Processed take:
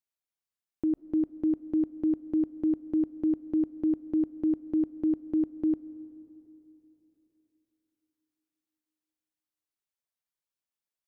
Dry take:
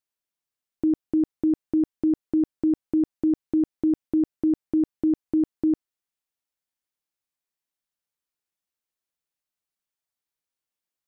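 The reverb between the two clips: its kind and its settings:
comb and all-pass reverb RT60 3.4 s, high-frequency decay 0.55×, pre-delay 100 ms, DRR 18.5 dB
level −5.5 dB

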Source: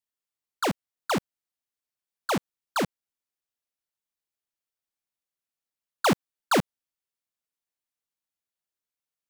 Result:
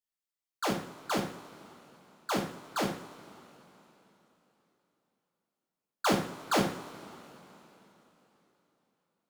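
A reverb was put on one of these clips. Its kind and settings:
coupled-rooms reverb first 0.47 s, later 3.7 s, from −20 dB, DRR −2.5 dB
level −8 dB

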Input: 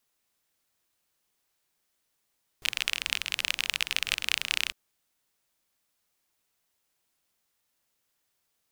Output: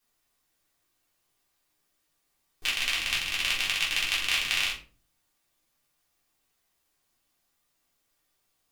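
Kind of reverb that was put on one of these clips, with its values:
rectangular room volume 220 cubic metres, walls furnished, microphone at 3.6 metres
level −4 dB

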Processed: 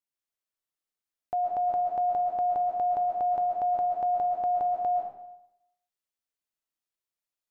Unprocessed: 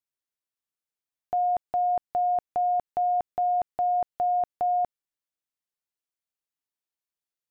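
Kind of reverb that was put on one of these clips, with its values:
comb and all-pass reverb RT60 0.83 s, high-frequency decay 0.9×, pre-delay 95 ms, DRR 0.5 dB
level −3 dB

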